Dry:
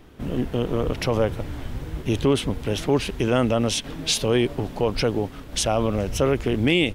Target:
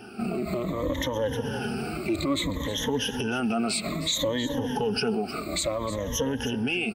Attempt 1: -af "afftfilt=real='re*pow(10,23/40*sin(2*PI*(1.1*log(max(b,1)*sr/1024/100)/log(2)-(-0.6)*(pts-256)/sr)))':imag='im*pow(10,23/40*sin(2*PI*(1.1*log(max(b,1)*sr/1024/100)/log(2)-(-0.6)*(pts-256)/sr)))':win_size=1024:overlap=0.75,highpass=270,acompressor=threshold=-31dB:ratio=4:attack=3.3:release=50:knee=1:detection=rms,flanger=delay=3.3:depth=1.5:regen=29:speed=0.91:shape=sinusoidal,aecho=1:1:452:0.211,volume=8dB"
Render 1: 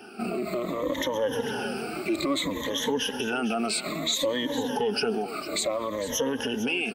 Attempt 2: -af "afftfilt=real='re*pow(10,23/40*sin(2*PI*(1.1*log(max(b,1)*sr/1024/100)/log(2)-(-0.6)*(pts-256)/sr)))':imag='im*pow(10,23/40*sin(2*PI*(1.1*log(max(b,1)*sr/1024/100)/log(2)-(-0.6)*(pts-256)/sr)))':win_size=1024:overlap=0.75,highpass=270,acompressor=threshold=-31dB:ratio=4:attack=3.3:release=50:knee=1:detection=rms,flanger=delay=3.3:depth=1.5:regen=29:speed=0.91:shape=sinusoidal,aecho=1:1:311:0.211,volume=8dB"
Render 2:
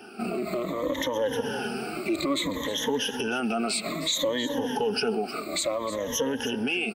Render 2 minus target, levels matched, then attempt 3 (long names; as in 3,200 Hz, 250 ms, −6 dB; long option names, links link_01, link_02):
125 Hz band −8.5 dB
-af "afftfilt=real='re*pow(10,23/40*sin(2*PI*(1.1*log(max(b,1)*sr/1024/100)/log(2)-(-0.6)*(pts-256)/sr)))':imag='im*pow(10,23/40*sin(2*PI*(1.1*log(max(b,1)*sr/1024/100)/log(2)-(-0.6)*(pts-256)/sr)))':win_size=1024:overlap=0.75,highpass=90,acompressor=threshold=-31dB:ratio=4:attack=3.3:release=50:knee=1:detection=rms,flanger=delay=3.3:depth=1.5:regen=29:speed=0.91:shape=sinusoidal,aecho=1:1:311:0.211,volume=8dB"